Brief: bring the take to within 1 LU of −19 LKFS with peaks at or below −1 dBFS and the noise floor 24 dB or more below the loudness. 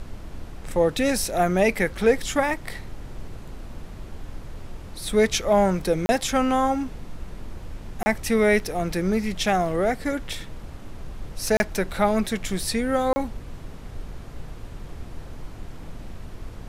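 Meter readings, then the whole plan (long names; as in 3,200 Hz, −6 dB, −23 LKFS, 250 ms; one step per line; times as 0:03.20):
number of dropouts 4; longest dropout 30 ms; background noise floor −40 dBFS; target noise floor −48 dBFS; integrated loudness −23.5 LKFS; sample peak −7.0 dBFS; target loudness −19.0 LKFS
→ repair the gap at 0:06.06/0:08.03/0:11.57/0:13.13, 30 ms
noise reduction from a noise print 8 dB
level +4.5 dB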